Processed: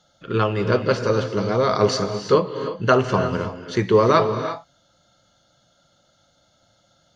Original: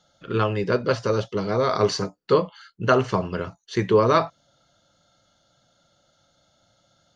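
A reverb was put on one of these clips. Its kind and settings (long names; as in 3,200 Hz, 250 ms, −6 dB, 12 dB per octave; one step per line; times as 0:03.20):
reverb whose tail is shaped and stops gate 370 ms rising, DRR 8 dB
level +2 dB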